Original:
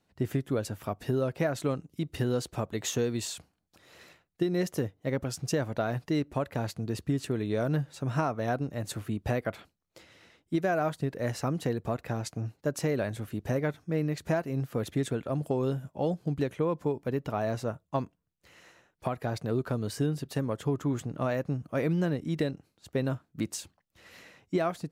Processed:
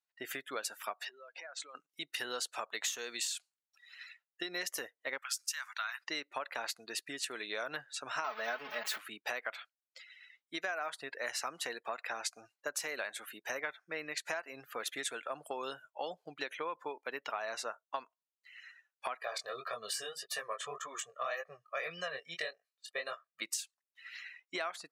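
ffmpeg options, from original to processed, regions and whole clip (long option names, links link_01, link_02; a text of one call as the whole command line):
ffmpeg -i in.wav -filter_complex "[0:a]asettb=1/sr,asplit=3[link_01][link_02][link_03];[link_01]atrim=end=1.054[link_04];[link_02]atrim=start=1.05:end=1.75,asetpts=PTS-STARTPTS,afade=type=in:duration=0.004:curve=qsin,afade=type=out:start_time=0.696:duration=0.004:curve=qsin,lowpass=frequency=8200:width=0.5412,lowpass=frequency=8200:width=1.3066,acompressor=threshold=-41dB:ratio=10:attack=3.2:release=140:knee=1:detection=peak[link_05];[link_03]atrim=start=1.746[link_06];[link_04][link_05]acrossfade=duration=0.004:curve1=hsin:curve2=qsin[link_07];[link_07][link_06]acrossfade=duration=0.004:curve1=qsin:curve2=hsin,asettb=1/sr,asplit=3[link_08][link_09][link_10];[link_08]atrim=end=5.184[link_11];[link_09]atrim=start=5.18:end=6.01,asetpts=PTS-STARTPTS,afade=type=in:duration=0.004:curve=qsin,afade=type=out:start_time=0.826:duration=0.004:curve=qsin,highpass=frequency=1100:width=0.5412,highpass=frequency=1100:width=1.3066,highshelf=frequency=10000:gain=4.5[link_12];[link_10]atrim=start=6.006[link_13];[link_11][link_12]acrossfade=duration=0.004:curve1=hsin:curve2=qsin[link_14];[link_14][link_13]acrossfade=duration=0.004:curve1=qsin:curve2=hsin,asettb=1/sr,asplit=3[link_15][link_16][link_17];[link_15]atrim=end=8.244[link_18];[link_16]atrim=start=8.24:end=8.98,asetpts=PTS-STARTPTS,afade=type=in:duration=0.004:curve=qsin,afade=type=out:start_time=0.736:duration=0.004:curve=qsin,aeval=exprs='val(0)+0.5*0.0188*sgn(val(0))':channel_layout=same,equalizer=frequency=8700:width=0.8:gain=-13,aecho=1:1:4.7:0.85,atrim=end_sample=32634[link_19];[link_17]atrim=start=8.976[link_20];[link_18][link_19]acrossfade=duration=0.004:curve1=hsin:curve2=qsin[link_21];[link_21][link_20]acrossfade=duration=0.004:curve1=qsin:curve2=hsin,asettb=1/sr,asplit=3[link_22][link_23][link_24];[link_22]atrim=end=19.214[link_25];[link_23]atrim=start=19.21:end=23.42,asetpts=PTS-STARTPTS,afade=type=in:duration=0.004:curve=qsin,afade=type=out:start_time=4.206:duration=0.004:curve=qsin,aecho=1:1:1.7:0.8,atrim=end_sample=185661,flanger=delay=17.5:depth=7:speed=1.8[link_26];[link_24]atrim=start=23.416[link_27];[link_25][link_26]acrossfade=duration=0.004:curve1=hsin:curve2=qsin[link_28];[link_28][link_27]acrossfade=duration=0.004:curve1=qsin:curve2=hsin,highpass=1300,afftdn=noise_reduction=24:noise_floor=-56,acompressor=threshold=-42dB:ratio=6,volume=8dB" out.wav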